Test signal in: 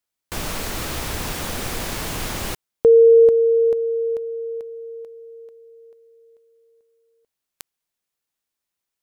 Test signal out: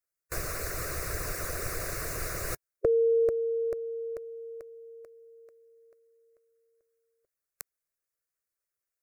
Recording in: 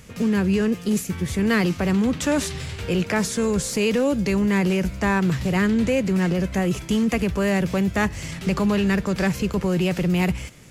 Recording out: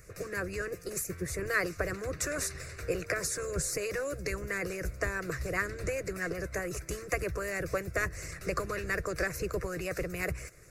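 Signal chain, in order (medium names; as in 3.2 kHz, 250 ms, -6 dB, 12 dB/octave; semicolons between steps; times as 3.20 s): harmonic-percussive split harmonic -13 dB; static phaser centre 870 Hz, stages 6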